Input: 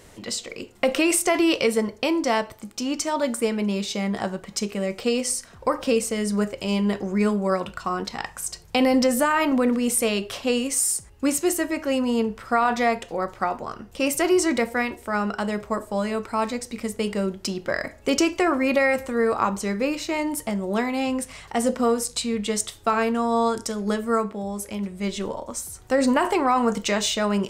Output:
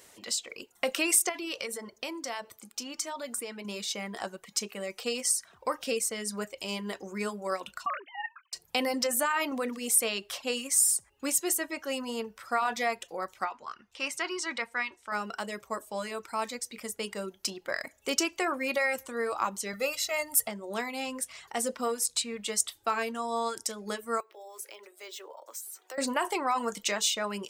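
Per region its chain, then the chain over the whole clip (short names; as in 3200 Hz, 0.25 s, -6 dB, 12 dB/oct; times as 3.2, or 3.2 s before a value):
1.29–3.65 compressor 2:1, threshold -28 dBFS + de-hum 74.04 Hz, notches 20
7.86–8.53 sine-wave speech + HPF 620 Hz
13.45–15.12 LPF 4900 Hz + resonant low shelf 790 Hz -6 dB, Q 1.5
19.73–20.48 high shelf 12000 Hz +11 dB + comb 1.5 ms, depth 97%
24.2–25.98 steep high-pass 330 Hz 48 dB/oct + compressor 2.5:1, threshold -36 dBFS + decimation joined by straight lines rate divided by 2×
whole clip: RIAA curve recording; reverb removal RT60 0.51 s; high shelf 5600 Hz -8.5 dB; gain -6.5 dB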